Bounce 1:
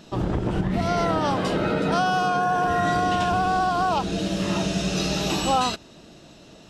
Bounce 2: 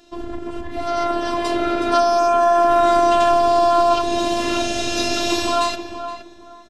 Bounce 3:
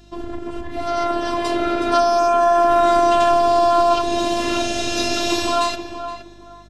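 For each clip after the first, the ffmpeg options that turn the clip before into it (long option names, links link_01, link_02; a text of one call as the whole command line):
ffmpeg -i in.wav -filter_complex "[0:a]afftfilt=real='hypot(re,im)*cos(PI*b)':imag='0':win_size=512:overlap=0.75,dynaudnorm=framelen=220:gausssize=11:maxgain=11.5dB,asplit=2[link_01][link_02];[link_02]adelay=469,lowpass=frequency=1800:poles=1,volume=-9dB,asplit=2[link_03][link_04];[link_04]adelay=469,lowpass=frequency=1800:poles=1,volume=0.26,asplit=2[link_05][link_06];[link_06]adelay=469,lowpass=frequency=1800:poles=1,volume=0.26[link_07];[link_01][link_03][link_05][link_07]amix=inputs=4:normalize=0" out.wav
ffmpeg -i in.wav -af "aeval=exprs='val(0)+0.00398*(sin(2*PI*50*n/s)+sin(2*PI*2*50*n/s)/2+sin(2*PI*3*50*n/s)/3+sin(2*PI*4*50*n/s)/4+sin(2*PI*5*50*n/s)/5)':channel_layout=same" out.wav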